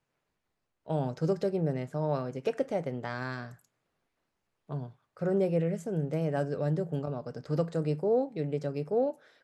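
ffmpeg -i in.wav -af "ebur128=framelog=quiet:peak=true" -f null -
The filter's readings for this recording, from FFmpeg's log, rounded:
Integrated loudness:
  I:         -31.8 LUFS
  Threshold: -42.1 LUFS
Loudness range:
  LRA:         4.8 LU
  Threshold: -52.9 LUFS
  LRA low:   -35.9 LUFS
  LRA high:  -31.1 LUFS
True peak:
  Peak:      -16.4 dBFS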